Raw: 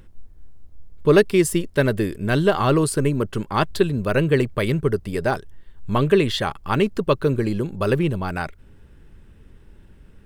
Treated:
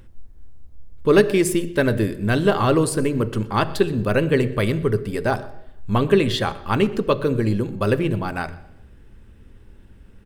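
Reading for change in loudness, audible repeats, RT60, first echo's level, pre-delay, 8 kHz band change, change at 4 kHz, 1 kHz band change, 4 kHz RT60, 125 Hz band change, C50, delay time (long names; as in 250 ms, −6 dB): +0.5 dB, 1, 0.80 s, −22.0 dB, 3 ms, 0.0 dB, 0.0 dB, +0.5 dB, 0.80 s, 0.0 dB, 15.0 dB, 122 ms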